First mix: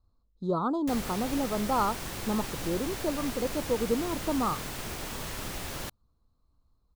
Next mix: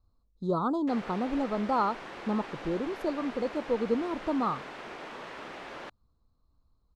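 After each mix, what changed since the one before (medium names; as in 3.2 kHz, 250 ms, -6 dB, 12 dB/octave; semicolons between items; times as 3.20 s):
background: add band-pass 340–2300 Hz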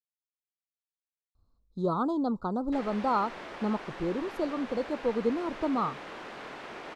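speech: entry +1.35 s; background: entry +1.85 s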